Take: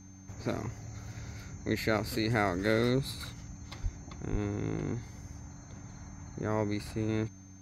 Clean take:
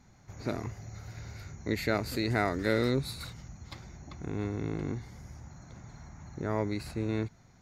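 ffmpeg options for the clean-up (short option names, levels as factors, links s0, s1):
-filter_complex "[0:a]bandreject=f=94.9:t=h:w=4,bandreject=f=189.8:t=h:w=4,bandreject=f=284.7:t=h:w=4,bandreject=f=6300:w=30,asplit=3[s0][s1][s2];[s0]afade=t=out:st=3.82:d=0.02[s3];[s1]highpass=f=140:w=0.5412,highpass=f=140:w=1.3066,afade=t=in:st=3.82:d=0.02,afade=t=out:st=3.94:d=0.02[s4];[s2]afade=t=in:st=3.94:d=0.02[s5];[s3][s4][s5]amix=inputs=3:normalize=0,asplit=3[s6][s7][s8];[s6]afade=t=out:st=4.31:d=0.02[s9];[s7]highpass=f=140:w=0.5412,highpass=f=140:w=1.3066,afade=t=in:st=4.31:d=0.02,afade=t=out:st=4.43:d=0.02[s10];[s8]afade=t=in:st=4.43:d=0.02[s11];[s9][s10][s11]amix=inputs=3:normalize=0"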